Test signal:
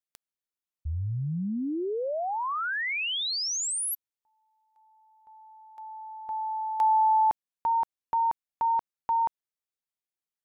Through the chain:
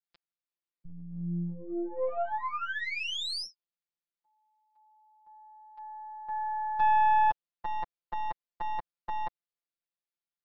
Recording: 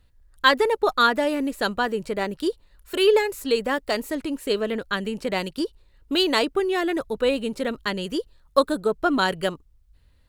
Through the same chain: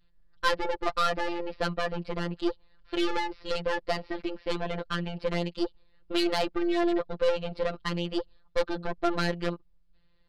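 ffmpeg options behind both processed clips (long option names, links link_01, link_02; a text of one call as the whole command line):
ffmpeg -i in.wav -af "adynamicequalizer=threshold=0.02:dfrequency=580:dqfactor=1.3:tfrequency=580:tqfactor=1.3:attack=5:release=100:ratio=0.375:range=2:mode=boostabove:tftype=bell,aresample=11025,asoftclip=type=tanh:threshold=-19dB,aresample=44100,aeval=exprs='0.178*(cos(1*acos(clip(val(0)/0.178,-1,1)))-cos(1*PI/2))+0.0251*(cos(4*acos(clip(val(0)/0.178,-1,1)))-cos(4*PI/2))+0.00316*(cos(7*acos(clip(val(0)/0.178,-1,1)))-cos(7*PI/2))':channel_layout=same,afftfilt=real='hypot(re,im)*cos(PI*b)':imag='0':win_size=1024:overlap=0.75" out.wav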